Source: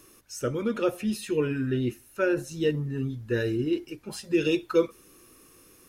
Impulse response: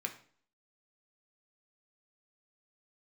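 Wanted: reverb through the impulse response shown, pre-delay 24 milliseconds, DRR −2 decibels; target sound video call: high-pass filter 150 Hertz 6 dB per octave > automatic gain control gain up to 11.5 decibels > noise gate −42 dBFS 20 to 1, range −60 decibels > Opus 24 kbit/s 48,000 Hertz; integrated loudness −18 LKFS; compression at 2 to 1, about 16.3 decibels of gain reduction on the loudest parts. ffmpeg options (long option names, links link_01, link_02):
-filter_complex "[0:a]acompressor=threshold=-49dB:ratio=2,asplit=2[link_01][link_02];[1:a]atrim=start_sample=2205,adelay=24[link_03];[link_02][link_03]afir=irnorm=-1:irlink=0,volume=1dB[link_04];[link_01][link_04]amix=inputs=2:normalize=0,highpass=frequency=150:poles=1,dynaudnorm=maxgain=11.5dB,agate=range=-60dB:threshold=-42dB:ratio=20,volume=21.5dB" -ar 48000 -c:a libopus -b:a 24k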